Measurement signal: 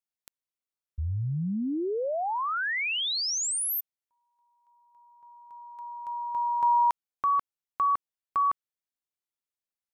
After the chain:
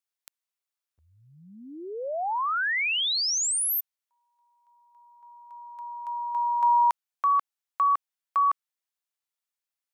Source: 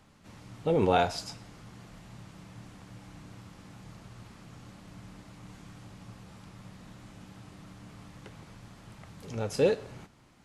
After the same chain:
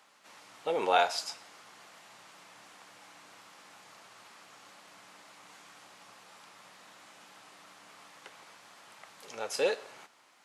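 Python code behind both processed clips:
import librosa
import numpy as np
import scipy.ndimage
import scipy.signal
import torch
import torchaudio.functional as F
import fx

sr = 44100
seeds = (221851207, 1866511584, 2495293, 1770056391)

y = scipy.signal.sosfilt(scipy.signal.butter(2, 700.0, 'highpass', fs=sr, output='sos'), x)
y = y * librosa.db_to_amplitude(3.0)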